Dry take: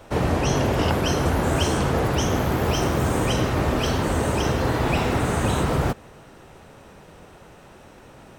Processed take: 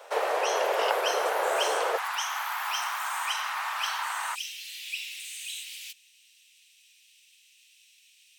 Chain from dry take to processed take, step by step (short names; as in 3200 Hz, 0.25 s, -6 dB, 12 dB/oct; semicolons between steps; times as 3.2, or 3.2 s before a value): steep high-pass 450 Hz 48 dB/oct, from 1.96 s 880 Hz, from 4.34 s 2500 Hz; dynamic EQ 6100 Hz, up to -4 dB, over -41 dBFS, Q 0.76